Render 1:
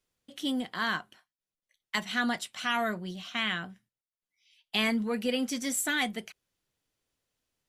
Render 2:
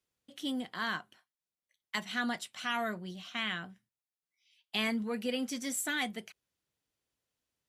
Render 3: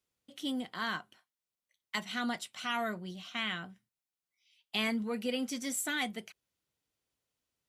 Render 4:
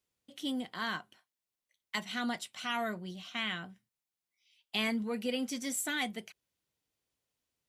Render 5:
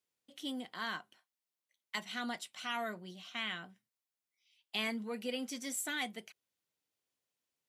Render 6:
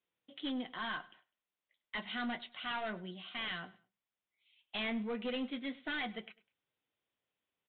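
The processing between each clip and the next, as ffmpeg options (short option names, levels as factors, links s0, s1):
-af "highpass=40,volume=0.596"
-af "bandreject=f=1700:w=17"
-af "equalizer=f=1300:w=4.6:g=-2.5"
-af "highpass=f=240:p=1,volume=0.708"
-af "aresample=8000,asoftclip=type=hard:threshold=0.0141,aresample=44100,flanger=delay=5.7:depth=4.7:regen=-61:speed=0.33:shape=triangular,aecho=1:1:101|202:0.0944|0.0283,volume=2.24"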